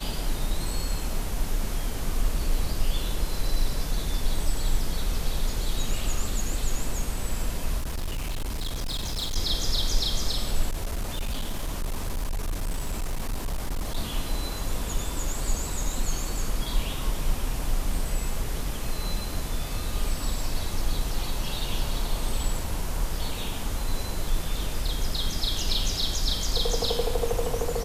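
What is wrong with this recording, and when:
7.78–9.37 clipped -26 dBFS
10.69–13.97 clipped -24.5 dBFS

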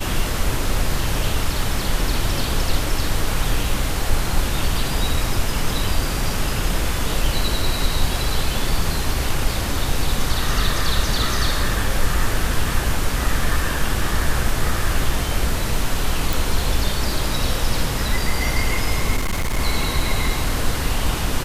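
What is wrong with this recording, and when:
16.33 pop
19.16–19.59 clipped -17.5 dBFS

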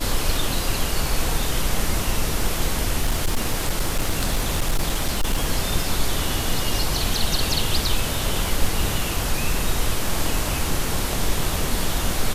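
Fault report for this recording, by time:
3.01–5.48 clipped -15.5 dBFS

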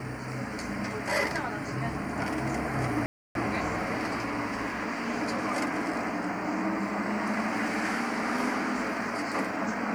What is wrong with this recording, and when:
3.06–3.35 gap 0.292 s

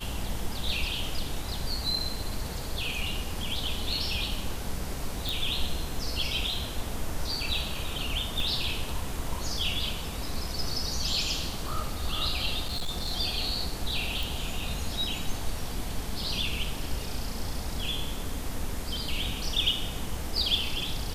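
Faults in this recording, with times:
5.29 pop
8.4 gap 2.3 ms
12.65–13.1 clipped -26.5 dBFS
14.23 pop

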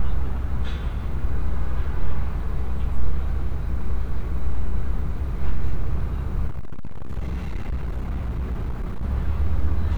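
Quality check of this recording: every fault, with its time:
6.47–9.04 clipped -22.5 dBFS

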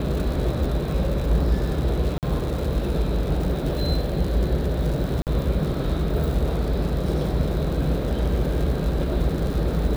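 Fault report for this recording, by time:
crackle 150/s -29 dBFS
2.18–2.23 gap 48 ms
5.22–5.27 gap 48 ms

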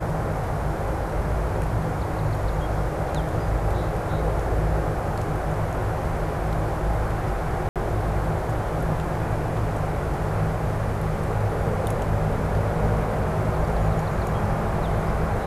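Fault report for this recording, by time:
7.69–7.76 gap 67 ms

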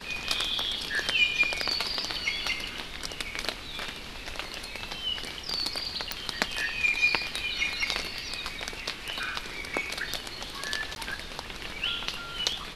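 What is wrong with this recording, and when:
6.12 pop
10.95–10.96 gap 11 ms

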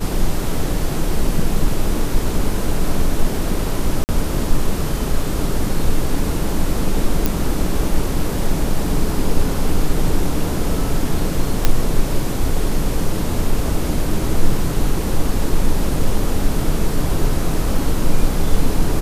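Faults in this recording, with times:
4.04–4.09 gap 49 ms
7.26 pop
11.65 pop 0 dBFS

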